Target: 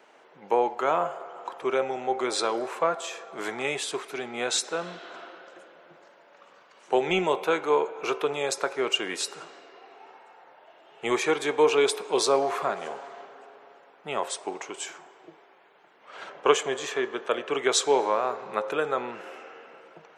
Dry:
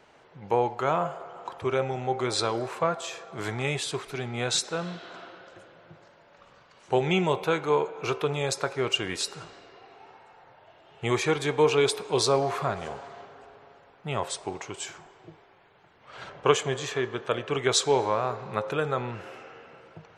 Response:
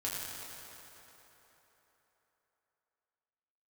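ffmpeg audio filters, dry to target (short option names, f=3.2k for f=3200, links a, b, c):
-filter_complex "[0:a]equalizer=f=4.4k:t=o:w=0.66:g=-3.5,acrossover=split=220|1900[a][b][c];[a]acrusher=bits=3:mix=0:aa=0.5[d];[d][b][c]amix=inputs=3:normalize=0,volume=1.5dB"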